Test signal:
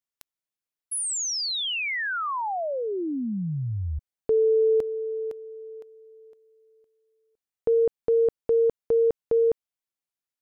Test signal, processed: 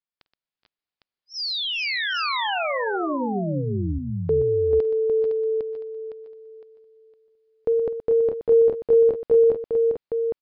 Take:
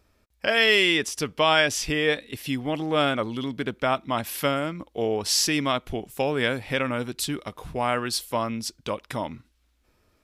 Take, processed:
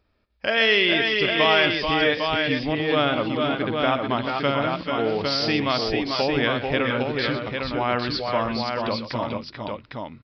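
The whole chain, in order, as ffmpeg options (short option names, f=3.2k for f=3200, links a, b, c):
-filter_complex "[0:a]dynaudnorm=f=140:g=5:m=5dB,asplit=2[a][b];[b]aecho=0:1:49|123|421|439|449|805:0.112|0.266|0.15|0.531|0.266|0.596[c];[a][c]amix=inputs=2:normalize=0,aresample=11025,aresample=44100,volume=-4dB"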